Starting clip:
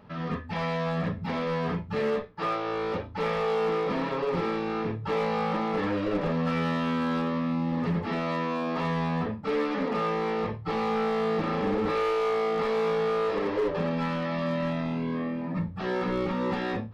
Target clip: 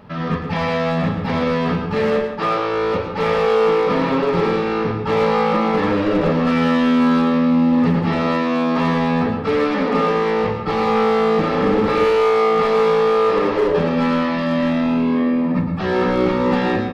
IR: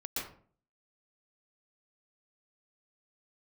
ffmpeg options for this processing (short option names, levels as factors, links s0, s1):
-filter_complex "[0:a]asplit=2[s0][s1];[s1]adelay=180.8,volume=0.2,highshelf=f=4000:g=-4.07[s2];[s0][s2]amix=inputs=2:normalize=0,asplit=2[s3][s4];[1:a]atrim=start_sample=2205,asetrate=48510,aresample=44100[s5];[s4][s5]afir=irnorm=-1:irlink=0,volume=0.562[s6];[s3][s6]amix=inputs=2:normalize=0,volume=2.24"